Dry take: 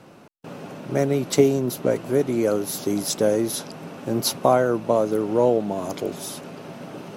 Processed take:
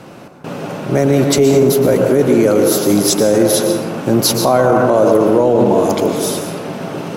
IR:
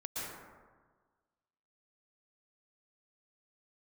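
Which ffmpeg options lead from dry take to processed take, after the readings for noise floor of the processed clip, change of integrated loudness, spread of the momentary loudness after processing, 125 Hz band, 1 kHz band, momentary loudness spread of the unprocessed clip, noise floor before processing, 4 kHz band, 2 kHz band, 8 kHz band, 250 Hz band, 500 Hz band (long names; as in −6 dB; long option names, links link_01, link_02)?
−36 dBFS, +9.5 dB, 13 LU, +10.5 dB, +9.0 dB, 18 LU, −48 dBFS, +10.5 dB, +10.5 dB, +11.0 dB, +10.5 dB, +9.5 dB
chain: -filter_complex "[0:a]asplit=2[link_01][link_02];[1:a]atrim=start_sample=2205[link_03];[link_02][link_03]afir=irnorm=-1:irlink=0,volume=-3.5dB[link_04];[link_01][link_04]amix=inputs=2:normalize=0,alimiter=limit=-12dB:level=0:latency=1:release=16,volume=9dB"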